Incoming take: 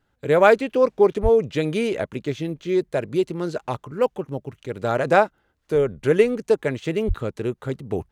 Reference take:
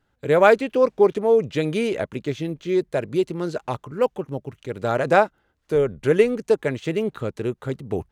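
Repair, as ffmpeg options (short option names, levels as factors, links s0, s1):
-filter_complex "[0:a]asplit=3[s0][s1][s2];[s0]afade=t=out:st=1.22:d=0.02[s3];[s1]highpass=f=140:w=0.5412,highpass=f=140:w=1.3066,afade=t=in:st=1.22:d=0.02,afade=t=out:st=1.34:d=0.02[s4];[s2]afade=t=in:st=1.34:d=0.02[s5];[s3][s4][s5]amix=inputs=3:normalize=0,asplit=3[s6][s7][s8];[s6]afade=t=out:st=7.07:d=0.02[s9];[s7]highpass=f=140:w=0.5412,highpass=f=140:w=1.3066,afade=t=in:st=7.07:d=0.02,afade=t=out:st=7.19:d=0.02[s10];[s8]afade=t=in:st=7.19:d=0.02[s11];[s9][s10][s11]amix=inputs=3:normalize=0"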